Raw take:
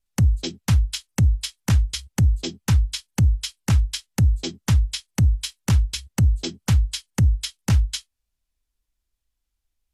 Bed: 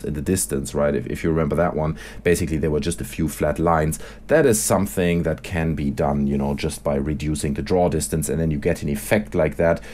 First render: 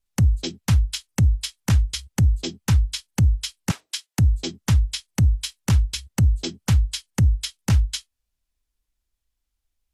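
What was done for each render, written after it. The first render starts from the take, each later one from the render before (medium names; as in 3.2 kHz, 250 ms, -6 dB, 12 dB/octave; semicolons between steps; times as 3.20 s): 3.71–4.19 s: high-pass 390 Hz 24 dB/octave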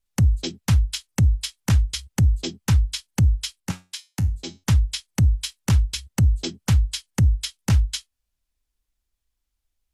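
3.60–4.64 s: feedback comb 91 Hz, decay 0.26 s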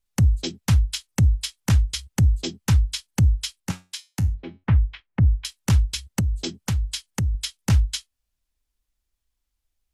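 4.34–5.45 s: low-pass 2.3 kHz 24 dB/octave; 6.20–7.35 s: compression 2.5:1, threshold -22 dBFS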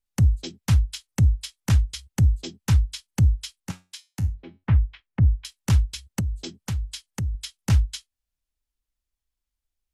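upward expansion 1.5:1, over -26 dBFS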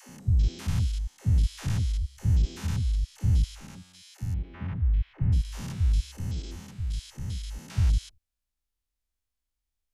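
spectrogram pixelated in time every 200 ms; phase dispersion lows, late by 90 ms, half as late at 360 Hz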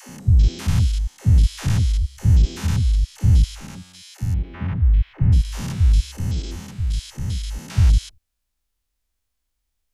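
trim +8.5 dB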